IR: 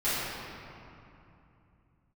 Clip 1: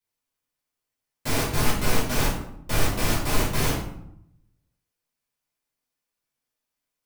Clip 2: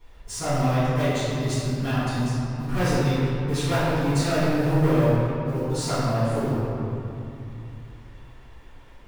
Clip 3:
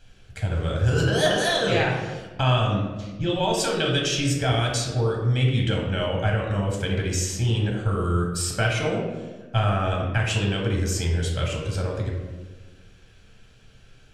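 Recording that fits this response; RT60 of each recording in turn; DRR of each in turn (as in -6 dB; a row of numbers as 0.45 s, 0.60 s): 2; 0.75 s, 2.8 s, 1.3 s; -7.5 dB, -15.5 dB, -1.5 dB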